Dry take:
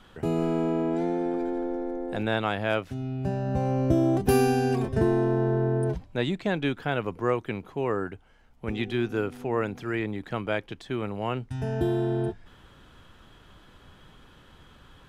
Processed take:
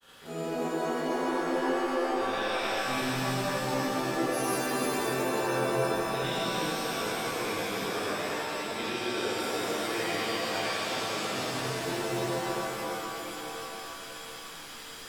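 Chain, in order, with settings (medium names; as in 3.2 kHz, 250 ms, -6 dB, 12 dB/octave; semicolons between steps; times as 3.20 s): spectrogram pixelated in time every 50 ms; RIAA curve recording; reverse; compression 6:1, threshold -38 dBFS, peak gain reduction 19 dB; reverse; granulator, pitch spread up and down by 0 st; pitch-shifted reverb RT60 3.9 s, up +7 st, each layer -2 dB, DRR -9 dB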